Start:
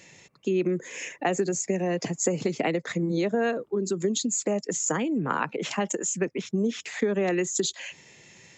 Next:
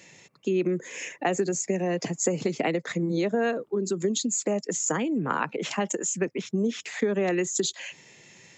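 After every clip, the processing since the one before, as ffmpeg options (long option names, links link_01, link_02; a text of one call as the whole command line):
ffmpeg -i in.wav -af "highpass=99" out.wav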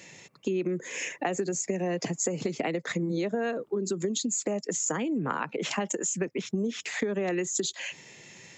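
ffmpeg -i in.wav -af "acompressor=threshold=-30dB:ratio=3,volume=2.5dB" out.wav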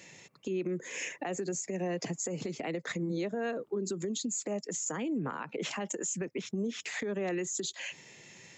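ffmpeg -i in.wav -af "alimiter=limit=-22dB:level=0:latency=1:release=50,volume=-3.5dB" out.wav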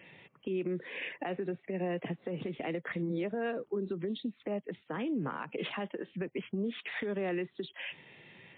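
ffmpeg -i in.wav -ar 8000 -c:a libmp3lame -b:a 24k out.mp3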